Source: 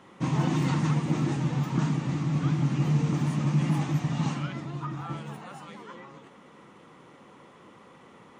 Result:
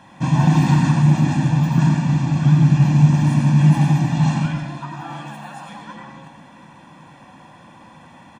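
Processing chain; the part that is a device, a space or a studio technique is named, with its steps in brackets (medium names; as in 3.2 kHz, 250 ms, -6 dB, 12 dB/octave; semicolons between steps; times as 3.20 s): 4.45–5.69 s: Bessel high-pass 300 Hz, order 2; microphone above a desk (comb 1.2 ms, depth 86%; reverberation RT60 0.65 s, pre-delay 82 ms, DRR 3.5 dB); trim +4.5 dB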